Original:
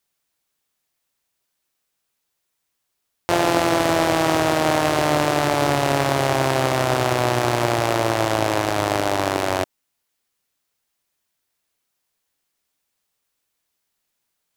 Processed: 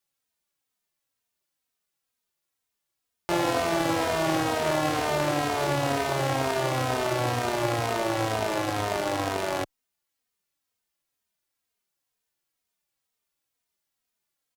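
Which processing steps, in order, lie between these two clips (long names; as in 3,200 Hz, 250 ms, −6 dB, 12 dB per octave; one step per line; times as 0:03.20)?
barber-pole flanger 3 ms −2.1 Hz
level −3.5 dB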